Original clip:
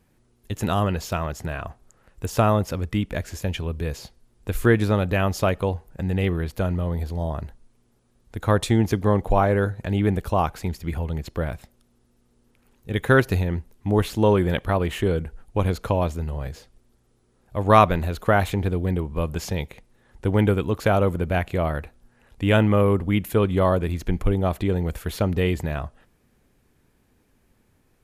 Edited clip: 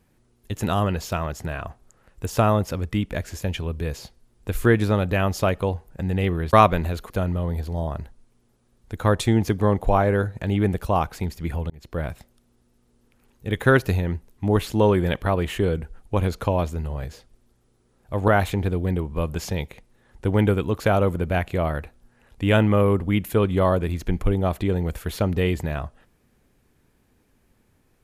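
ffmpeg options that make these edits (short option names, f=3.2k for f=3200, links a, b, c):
-filter_complex "[0:a]asplit=5[a][b][c][d][e];[a]atrim=end=6.532[f];[b]atrim=start=17.708:end=18.282[g];[c]atrim=start=6.528:end=11.13,asetpts=PTS-STARTPTS,afade=t=out:st=4.598:d=0.004:c=hsin[h];[d]atrim=start=11.13:end=17.712,asetpts=PTS-STARTPTS,afade=t=in:d=0.34[i];[e]atrim=start=18.278[j];[f][g]acrossfade=d=0.004:c1=hsin:c2=hsin[k];[h][i]concat=n=2:v=0:a=1[l];[k][l]acrossfade=d=0.004:c1=hsin:c2=hsin[m];[m][j]acrossfade=d=0.004:c1=hsin:c2=hsin"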